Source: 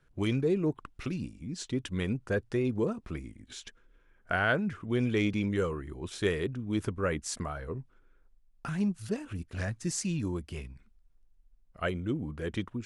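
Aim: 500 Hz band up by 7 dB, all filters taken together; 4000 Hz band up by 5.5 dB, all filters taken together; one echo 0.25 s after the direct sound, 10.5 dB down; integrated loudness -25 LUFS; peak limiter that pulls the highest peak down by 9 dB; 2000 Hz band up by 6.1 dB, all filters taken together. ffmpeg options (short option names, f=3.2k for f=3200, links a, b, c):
-af "equalizer=f=500:t=o:g=8.5,equalizer=f=2k:t=o:g=7,equalizer=f=4k:t=o:g=4.5,alimiter=limit=-16.5dB:level=0:latency=1,aecho=1:1:250:0.299,volume=4.5dB"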